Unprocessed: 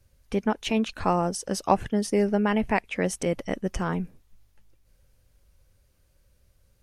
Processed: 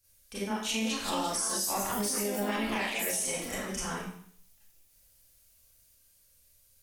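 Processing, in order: pre-emphasis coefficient 0.9; Schroeder reverb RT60 0.6 s, combs from 28 ms, DRR -9.5 dB; echoes that change speed 0.529 s, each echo +4 st, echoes 2, each echo -6 dB; limiter -21.5 dBFS, peak gain reduction 8.5 dB

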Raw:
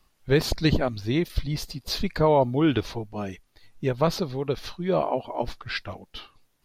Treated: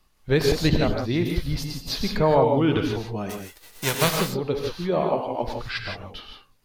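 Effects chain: 3.29–4.16 spectral whitening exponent 0.3; non-linear reverb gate 0.19 s rising, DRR 2.5 dB

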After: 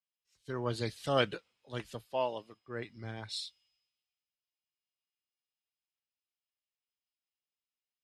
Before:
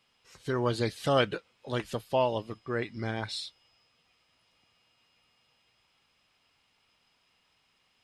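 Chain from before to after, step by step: 2.05–2.68 low shelf 180 Hz -11 dB; three-band expander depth 70%; gain -7.5 dB

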